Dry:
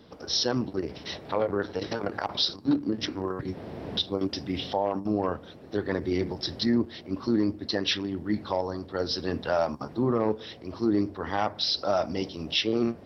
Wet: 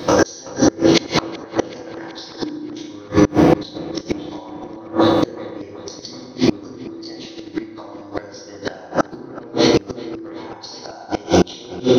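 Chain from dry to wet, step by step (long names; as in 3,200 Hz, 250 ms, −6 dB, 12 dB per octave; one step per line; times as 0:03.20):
every bin's largest magnitude spread in time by 60 ms
high-pass filter 99 Hz 6 dB per octave
downward compressor 3 to 1, threshold −31 dBFS, peak gain reduction 10.5 dB
transient designer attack +12 dB, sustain −7 dB
tuned comb filter 230 Hz, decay 1 s, mix 50%
feedback delay network reverb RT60 2.1 s, low-frequency decay 1.05×, high-frequency decay 0.5×, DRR −2.5 dB
gate with flip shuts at −23 dBFS, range −30 dB
speed change +9%
on a send: delay with a low-pass on its return 378 ms, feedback 69%, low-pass 4,000 Hz, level −20 dB
on the sum: boost into a limiter +25 dB
level −1 dB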